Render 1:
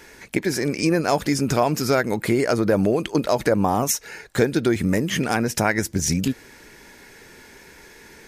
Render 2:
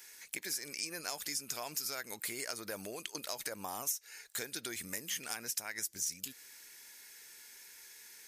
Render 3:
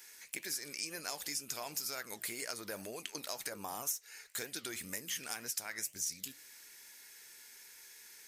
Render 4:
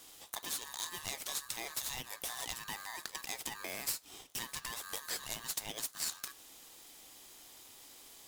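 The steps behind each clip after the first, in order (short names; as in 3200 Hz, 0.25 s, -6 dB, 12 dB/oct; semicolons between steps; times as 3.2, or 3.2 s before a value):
pre-emphasis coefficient 0.97; compressor 4:1, threshold -34 dBFS, peak gain reduction 14 dB; gain -1 dB
flange 2 Hz, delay 7.2 ms, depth 9.2 ms, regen -82%; gain +3.5 dB
on a send at -23 dB: reverb RT60 0.70 s, pre-delay 3 ms; on the sum: polarity switched at an audio rate 1400 Hz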